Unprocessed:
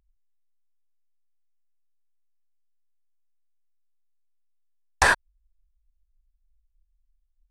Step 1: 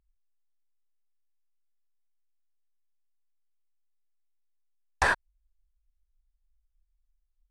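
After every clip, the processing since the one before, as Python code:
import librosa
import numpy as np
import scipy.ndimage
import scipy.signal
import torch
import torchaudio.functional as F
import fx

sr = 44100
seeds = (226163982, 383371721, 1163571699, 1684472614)

y = fx.high_shelf(x, sr, hz=4400.0, db=-8.5)
y = F.gain(torch.from_numpy(y), -4.5).numpy()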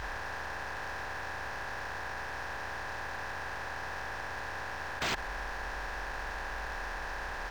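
y = fx.bin_compress(x, sr, power=0.2)
y = 10.0 ** (-22.5 / 20.0) * (np.abs((y / 10.0 ** (-22.5 / 20.0) + 3.0) % 4.0 - 2.0) - 1.0)
y = np.interp(np.arange(len(y)), np.arange(len(y))[::4], y[::4])
y = F.gain(torch.from_numpy(y), -2.5).numpy()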